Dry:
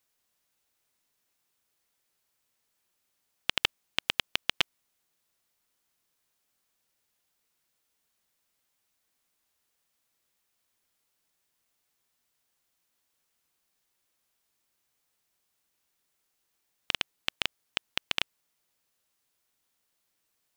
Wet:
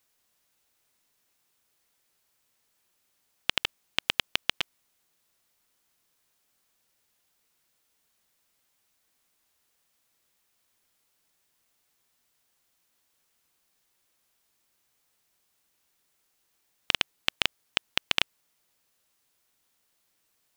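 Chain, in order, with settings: negative-ratio compressor -28 dBFS, ratio -1; gain +3.5 dB

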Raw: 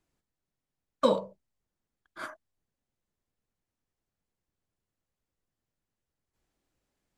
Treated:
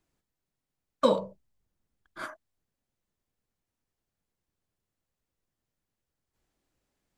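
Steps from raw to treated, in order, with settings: 1.19–2.23 low shelf 180 Hz +8 dB; gain +1 dB

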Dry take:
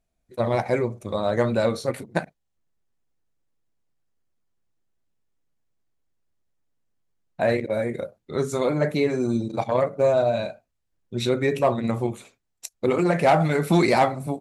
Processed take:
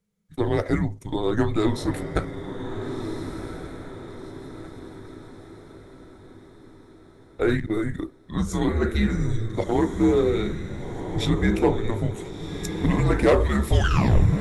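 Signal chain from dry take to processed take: tape stop at the end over 0.69 s; diffused feedback echo 1.426 s, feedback 46%, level -7.5 dB; frequency shift -220 Hz

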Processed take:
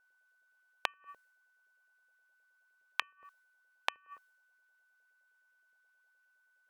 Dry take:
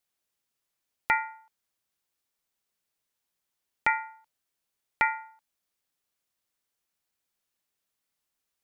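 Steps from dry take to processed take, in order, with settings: varispeed +29%; LFO high-pass saw up 9.6 Hz 490–1600 Hz; flipped gate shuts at -25 dBFS, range -38 dB; whine 1500 Hz -70 dBFS; mismatched tape noise reduction decoder only; gain +2.5 dB

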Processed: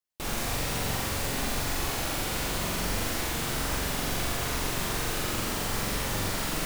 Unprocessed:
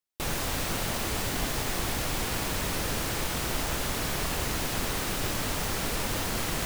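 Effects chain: flutter echo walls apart 7.5 m, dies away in 1.1 s; gain -3.5 dB

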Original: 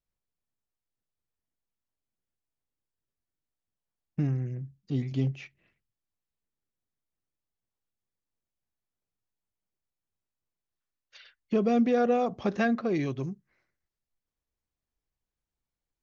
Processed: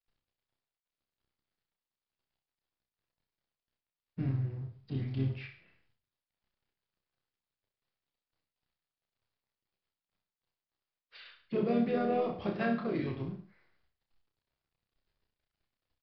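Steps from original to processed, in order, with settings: G.711 law mismatch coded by mu; bell 260 Hz -2.5 dB 0.44 oct; harmoniser -7 st -16 dB, -3 st -7 dB; downsampling 11025 Hz; on a send: reverse bouncing-ball echo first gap 30 ms, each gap 1.1×, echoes 5; on the sum: gain -8.5 dB

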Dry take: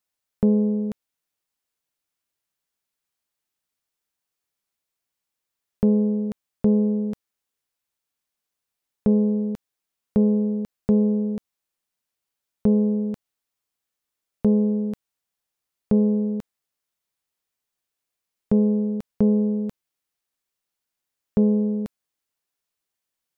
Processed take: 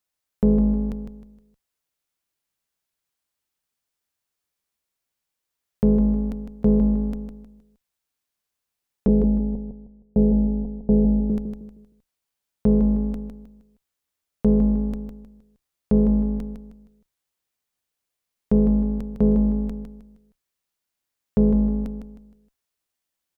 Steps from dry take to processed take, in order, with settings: octaver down 2 oct, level -5 dB; 9.08–11.3 steep low-pass 890 Hz 72 dB/oct; feedback echo 0.156 s, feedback 34%, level -7 dB

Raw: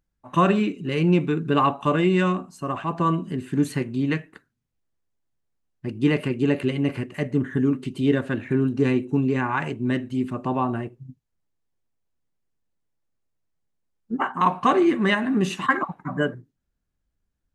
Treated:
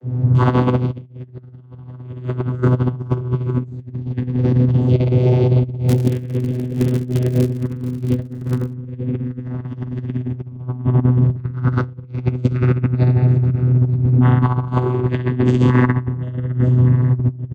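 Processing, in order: wind noise 140 Hz -24 dBFS; feedback echo 1.154 s, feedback 47%, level -19.5 dB; echoes that change speed 81 ms, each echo +4 st, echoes 2, each echo -6 dB; bell 140 Hz +9 dB 1.5 oct; reverb RT60 2.0 s, pre-delay 3 ms, DRR -18 dB; vocoder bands 16, saw 125 Hz; high shelf 3700 Hz +12 dB; 5.88–8.72 crackle 100/s -4 dBFS; negative-ratio compressor -3 dBFS, ratio -0.5; gain -14.5 dB

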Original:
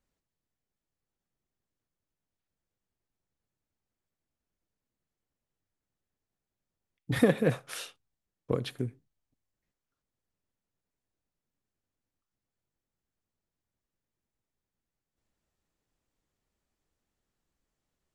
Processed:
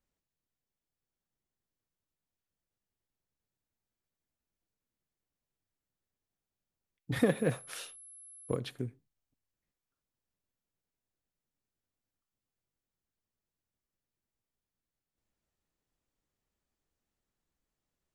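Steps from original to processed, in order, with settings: 7.25–8.55 whine 11000 Hz -46 dBFS; gain -4 dB

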